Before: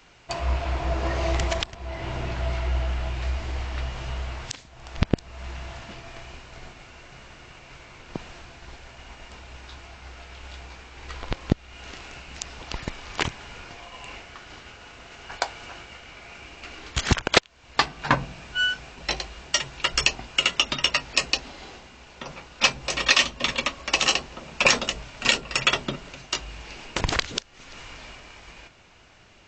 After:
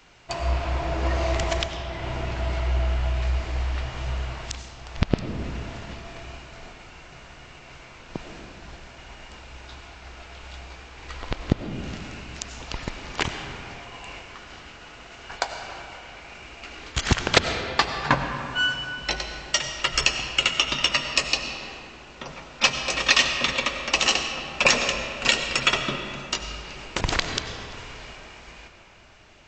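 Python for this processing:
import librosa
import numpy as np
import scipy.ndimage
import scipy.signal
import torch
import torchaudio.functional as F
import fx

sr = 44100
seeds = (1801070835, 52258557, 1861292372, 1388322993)

y = fx.rev_freeverb(x, sr, rt60_s=2.7, hf_ratio=0.55, predelay_ms=55, drr_db=5.5)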